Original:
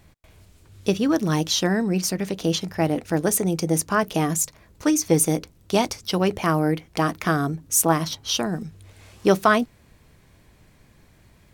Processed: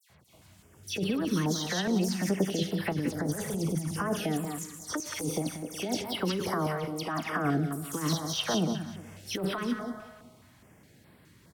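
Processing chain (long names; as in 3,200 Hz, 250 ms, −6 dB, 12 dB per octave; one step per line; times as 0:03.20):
high-pass filter 120 Hz 12 dB per octave
notch filter 2,400 Hz, Q 17
all-pass dispersion lows, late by 100 ms, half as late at 2,700 Hz
0:02.92–0:04.09: low-shelf EQ 190 Hz +10 dB
hard clipping −7.5 dBFS, distortion −29 dB
four-comb reverb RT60 1.2 s, combs from 32 ms, DRR 17 dB
compressor whose output falls as the input rises −24 dBFS, ratio −1
0:07.01–0:07.45: bass and treble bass −5 dB, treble −8 dB
repeating echo 184 ms, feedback 30%, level −8 dB
de-essing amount 55%
notch on a step sequencer 4.8 Hz 290–6,300 Hz
level −4 dB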